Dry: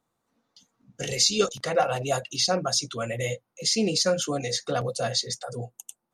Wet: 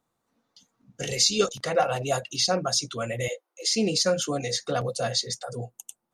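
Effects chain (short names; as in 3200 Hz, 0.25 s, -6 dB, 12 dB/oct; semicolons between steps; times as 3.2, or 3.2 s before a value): 3.28–3.74 elliptic high-pass 320 Hz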